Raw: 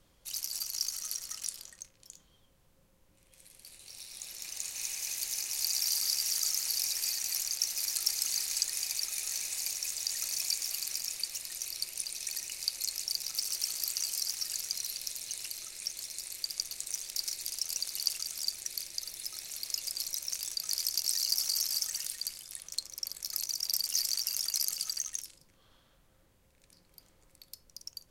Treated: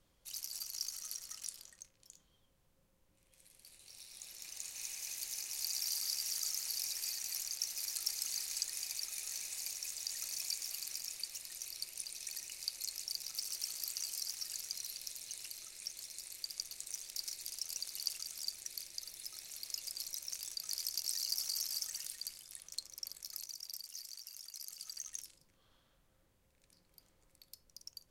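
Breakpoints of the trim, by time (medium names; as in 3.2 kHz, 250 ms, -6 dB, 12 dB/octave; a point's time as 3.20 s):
23.09 s -7 dB
23.97 s -17.5 dB
24.56 s -17.5 dB
25.21 s -6.5 dB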